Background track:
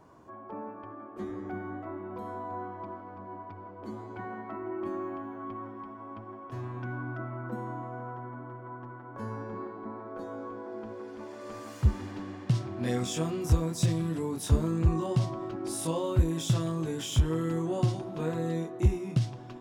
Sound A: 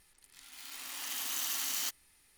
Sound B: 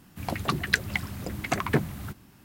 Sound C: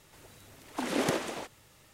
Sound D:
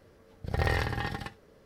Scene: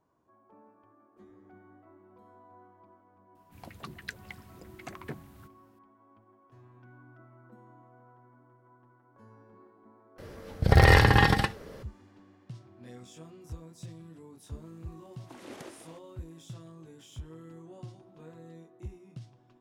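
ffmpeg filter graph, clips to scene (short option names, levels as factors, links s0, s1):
-filter_complex "[0:a]volume=0.126[s0];[4:a]alimiter=level_in=7.08:limit=0.891:release=50:level=0:latency=1[s1];[s0]asplit=2[s2][s3];[s2]atrim=end=10.184[s4];[s1]atrim=end=1.65,asetpts=PTS-STARTPTS,volume=0.596[s5];[s3]atrim=start=11.826[s6];[2:a]atrim=end=2.44,asetpts=PTS-STARTPTS,volume=0.15,afade=t=in:d=0.004:c=hsin,afade=t=out:st=2.436:d=0.004:c=hsin,adelay=3350[s7];[3:a]atrim=end=1.93,asetpts=PTS-STARTPTS,volume=0.15,afade=t=in:d=0.004:c=hsin,afade=t=out:st=1.926:d=0.004:c=hsin,adelay=14520[s8];[s4][s5]acrossfade=d=0.004:c1=hsin:c2=hsin[s9];[s9][s6]acrossfade=d=0.004:c1=hsin:c2=hsin[s10];[s10][s7][s8]amix=inputs=3:normalize=0"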